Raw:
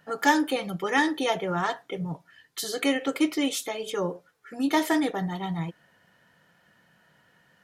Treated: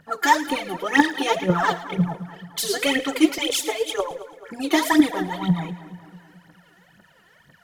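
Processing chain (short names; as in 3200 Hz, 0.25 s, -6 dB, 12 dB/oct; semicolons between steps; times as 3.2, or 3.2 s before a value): 3.38–4.11 steep high-pass 430 Hz 72 dB/oct; phaser 2 Hz, delay 3 ms, feedback 80%; split-band echo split 1800 Hz, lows 0.216 s, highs 0.109 s, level -14.5 dB; in parallel at +0.5 dB: vocal rider 2 s; on the sum: gain -5.5 dB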